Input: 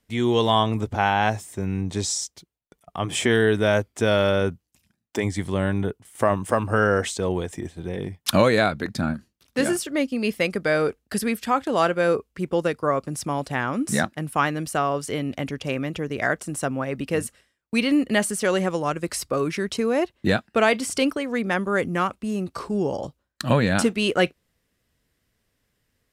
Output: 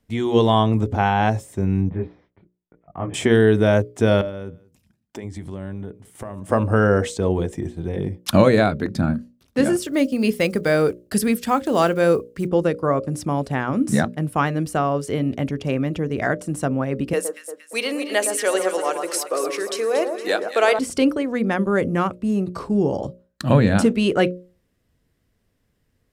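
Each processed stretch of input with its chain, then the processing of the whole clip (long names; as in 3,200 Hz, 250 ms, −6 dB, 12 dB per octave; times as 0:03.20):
0:01.89–0:03.14: Butterworth low-pass 2,300 Hz + micro pitch shift up and down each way 34 cents
0:04.21–0:06.50: downward compressor 3 to 1, threshold −37 dBFS + single-tap delay 189 ms −23 dB
0:09.82–0:12.49: one scale factor per block 7 bits + high-shelf EQ 4,000 Hz +9 dB
0:17.13–0:20.79: high-pass filter 410 Hz 24 dB per octave + high-shelf EQ 4,200 Hz +9 dB + delay that swaps between a low-pass and a high-pass 116 ms, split 1,400 Hz, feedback 69%, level −6 dB
whole clip: tilt shelving filter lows +5 dB, about 760 Hz; mains-hum notches 60/120/180/240/300/360/420/480/540/600 Hz; level +2 dB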